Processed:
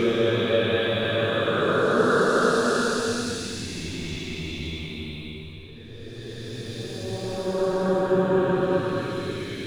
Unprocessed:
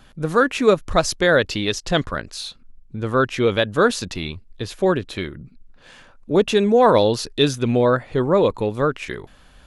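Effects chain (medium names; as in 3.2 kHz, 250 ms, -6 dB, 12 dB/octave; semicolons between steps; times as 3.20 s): hysteresis with a dead band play -42 dBFS; Paulstretch 5.7×, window 0.50 s, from 3.44 s; trim -3.5 dB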